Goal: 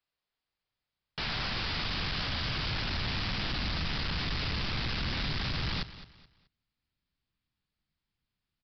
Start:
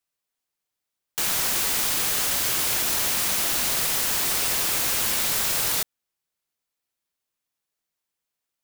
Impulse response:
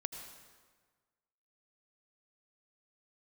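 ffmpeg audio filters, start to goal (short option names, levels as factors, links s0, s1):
-af "asubboost=boost=9.5:cutoff=170,aresample=11025,asoftclip=type=tanh:threshold=0.0335,aresample=44100,aecho=1:1:214|428|642:0.178|0.0551|0.0171"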